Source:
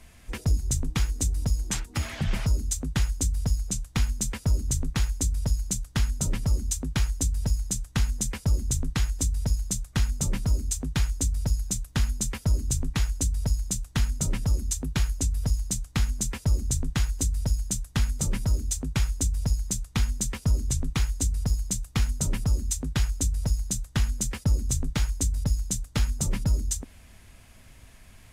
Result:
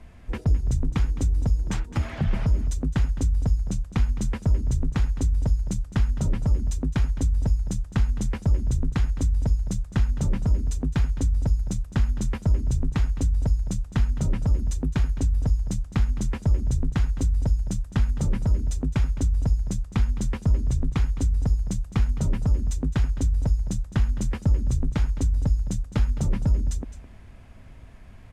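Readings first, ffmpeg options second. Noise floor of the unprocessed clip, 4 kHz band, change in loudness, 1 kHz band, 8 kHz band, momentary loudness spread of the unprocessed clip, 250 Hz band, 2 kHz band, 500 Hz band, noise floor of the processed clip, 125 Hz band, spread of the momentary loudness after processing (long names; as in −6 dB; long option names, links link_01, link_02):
−51 dBFS, −8.0 dB, +2.5 dB, +1.0 dB, −12.0 dB, 2 LU, +4.0 dB, −2.5 dB, +3.5 dB, −43 dBFS, +3.5 dB, 3 LU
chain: -filter_complex "[0:a]lowpass=frequency=1000:poles=1,asplit=2[link_01][link_02];[link_02]alimiter=limit=-23dB:level=0:latency=1:release=157,volume=2dB[link_03];[link_01][link_03]amix=inputs=2:normalize=0,aecho=1:1:212:0.178,volume=-1.5dB"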